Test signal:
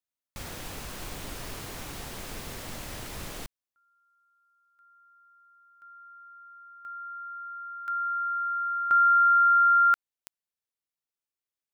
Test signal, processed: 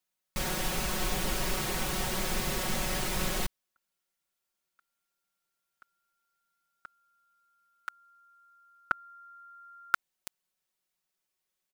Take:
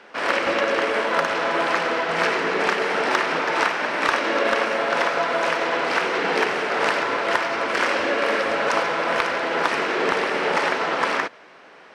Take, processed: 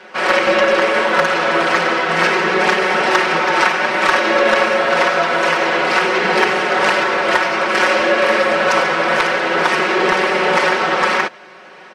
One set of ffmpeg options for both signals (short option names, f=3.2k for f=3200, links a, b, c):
-filter_complex "[0:a]aecho=1:1:5.4:0.99,asplit=2[a][b];[b]acontrast=79,volume=0dB[c];[a][c]amix=inputs=2:normalize=0,volume=-5.5dB"